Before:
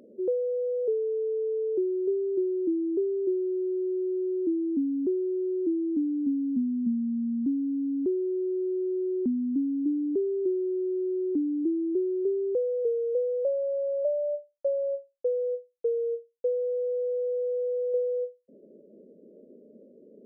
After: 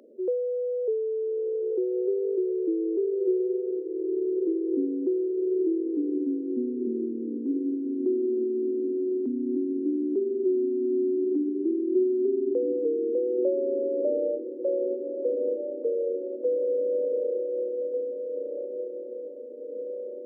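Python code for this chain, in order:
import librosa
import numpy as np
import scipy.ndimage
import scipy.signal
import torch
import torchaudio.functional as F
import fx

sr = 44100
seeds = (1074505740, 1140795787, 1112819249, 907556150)

p1 = scipy.signal.sosfilt(scipy.signal.butter(6, 260.0, 'highpass', fs=sr, output='sos'), x)
y = p1 + fx.echo_diffused(p1, sr, ms=1376, feedback_pct=64, wet_db=-7, dry=0)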